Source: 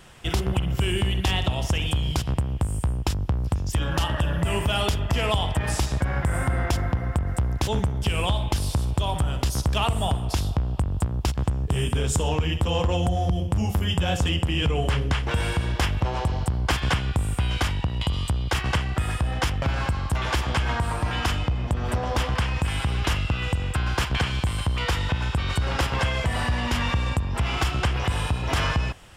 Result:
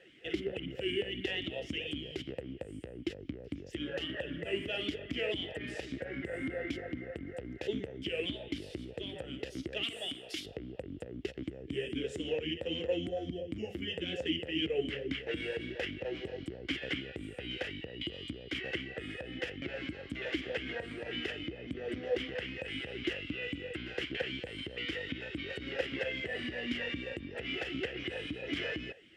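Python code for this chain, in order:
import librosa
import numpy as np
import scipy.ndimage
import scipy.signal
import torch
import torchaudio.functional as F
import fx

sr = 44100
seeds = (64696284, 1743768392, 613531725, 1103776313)

y = fx.tilt_eq(x, sr, slope=4.0, at=(9.83, 10.46))
y = 10.0 ** (-15.5 / 20.0) * np.tanh(y / 10.0 ** (-15.5 / 20.0))
y = fx.vowel_sweep(y, sr, vowels='e-i', hz=3.8)
y = y * 10.0 ** (4.0 / 20.0)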